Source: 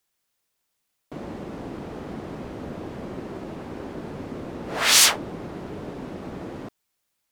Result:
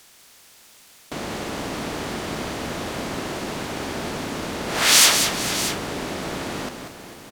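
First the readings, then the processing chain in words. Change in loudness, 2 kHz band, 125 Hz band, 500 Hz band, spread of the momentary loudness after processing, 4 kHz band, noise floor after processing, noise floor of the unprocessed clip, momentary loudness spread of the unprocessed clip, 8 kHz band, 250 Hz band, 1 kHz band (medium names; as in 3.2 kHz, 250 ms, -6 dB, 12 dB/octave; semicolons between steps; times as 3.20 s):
+0.5 dB, +4.0 dB, +3.5 dB, +5.0 dB, 17 LU, +3.0 dB, -51 dBFS, -77 dBFS, 20 LU, +3.0 dB, +4.0 dB, +5.5 dB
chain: spectral levelling over time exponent 0.6; multi-tap echo 189/449/627 ms -7/-15/-12 dB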